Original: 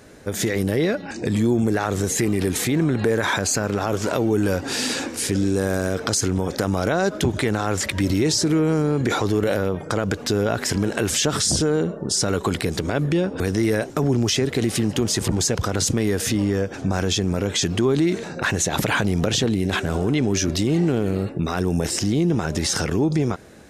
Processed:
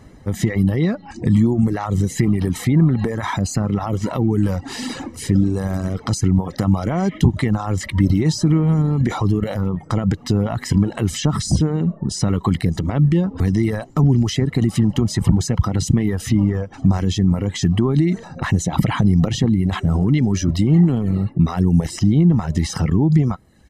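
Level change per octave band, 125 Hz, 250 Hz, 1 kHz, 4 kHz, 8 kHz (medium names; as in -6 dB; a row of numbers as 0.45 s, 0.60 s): +7.5 dB, +4.5 dB, -0.5 dB, -5.5 dB, -6.5 dB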